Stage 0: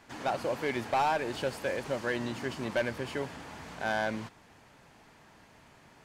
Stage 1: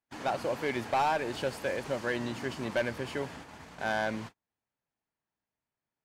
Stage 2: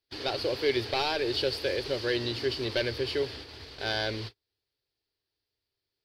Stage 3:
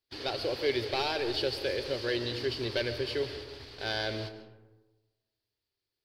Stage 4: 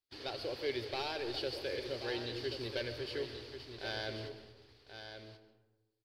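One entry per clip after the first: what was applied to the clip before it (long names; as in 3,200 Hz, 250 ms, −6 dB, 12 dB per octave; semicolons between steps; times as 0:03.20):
noise gate −44 dBFS, range −35 dB
drawn EQ curve 110 Hz 0 dB, 180 Hz −20 dB, 400 Hz +2 dB, 620 Hz −10 dB, 920 Hz −14 dB, 2,400 Hz −4 dB, 4,700 Hz +10 dB, 6,800 Hz −14 dB, 11,000 Hz −7 dB; level +7.5 dB
comb and all-pass reverb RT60 1.2 s, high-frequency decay 0.4×, pre-delay 90 ms, DRR 11 dB; level −2.5 dB
single-tap delay 1,082 ms −9 dB; level −7.5 dB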